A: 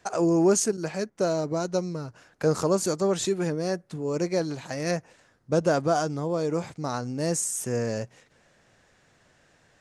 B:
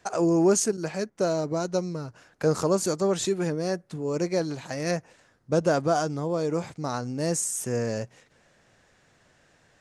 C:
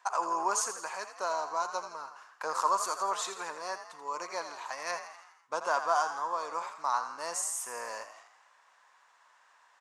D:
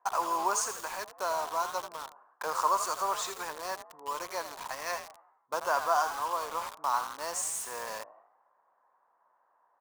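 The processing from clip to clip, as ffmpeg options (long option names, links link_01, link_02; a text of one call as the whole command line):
ffmpeg -i in.wav -af anull out.wav
ffmpeg -i in.wav -filter_complex "[0:a]highpass=frequency=1000:width_type=q:width=6.3,asplit=7[link_01][link_02][link_03][link_04][link_05][link_06][link_07];[link_02]adelay=83,afreqshift=51,volume=-10dB[link_08];[link_03]adelay=166,afreqshift=102,volume=-15dB[link_09];[link_04]adelay=249,afreqshift=153,volume=-20.1dB[link_10];[link_05]adelay=332,afreqshift=204,volume=-25.1dB[link_11];[link_06]adelay=415,afreqshift=255,volume=-30.1dB[link_12];[link_07]adelay=498,afreqshift=306,volume=-35.2dB[link_13];[link_01][link_08][link_09][link_10][link_11][link_12][link_13]amix=inputs=7:normalize=0,volume=-5.5dB" out.wav
ffmpeg -i in.wav -filter_complex "[0:a]acrossover=split=930[link_01][link_02];[link_01]crystalizer=i=6:c=0[link_03];[link_02]acrusher=bits=6:mix=0:aa=0.000001[link_04];[link_03][link_04]amix=inputs=2:normalize=0" out.wav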